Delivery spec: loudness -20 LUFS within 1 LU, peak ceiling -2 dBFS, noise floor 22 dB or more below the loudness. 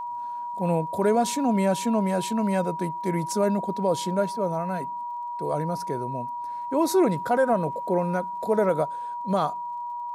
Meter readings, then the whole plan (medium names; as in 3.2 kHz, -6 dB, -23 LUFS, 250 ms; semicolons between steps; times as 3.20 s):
tick rate 31 per s; steady tone 960 Hz; tone level -30 dBFS; loudness -26.0 LUFS; peak level -11.5 dBFS; loudness target -20.0 LUFS
-> de-click; band-stop 960 Hz, Q 30; trim +6 dB